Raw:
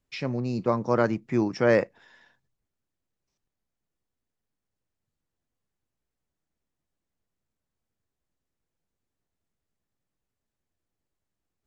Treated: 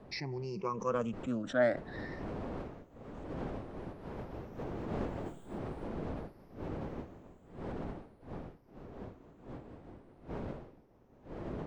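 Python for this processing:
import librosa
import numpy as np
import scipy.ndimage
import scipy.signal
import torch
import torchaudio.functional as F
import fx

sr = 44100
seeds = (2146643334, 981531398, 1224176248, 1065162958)

p1 = fx.spec_ripple(x, sr, per_octave=0.79, drift_hz=0.49, depth_db=23)
p2 = fx.dmg_wind(p1, sr, seeds[0], corner_hz=440.0, level_db=-40.0)
p3 = fx.doppler_pass(p2, sr, speed_mps=14, closest_m=3.8, pass_at_s=5.24)
p4 = fx.over_compress(p3, sr, threshold_db=-59.0, ratio=-1.0)
p5 = p3 + (p4 * 10.0 ** (1.5 / 20.0))
p6 = fx.doppler_dist(p5, sr, depth_ms=0.14)
y = p6 * 10.0 ** (8.5 / 20.0)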